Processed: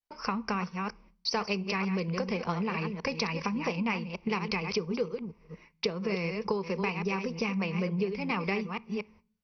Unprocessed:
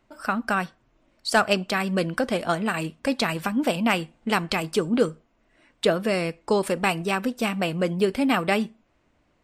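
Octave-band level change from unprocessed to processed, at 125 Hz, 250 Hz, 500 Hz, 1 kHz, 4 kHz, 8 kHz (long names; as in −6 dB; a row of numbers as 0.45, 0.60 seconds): −3.5, −6.5, −8.0, −8.0, −7.0, −10.5 decibels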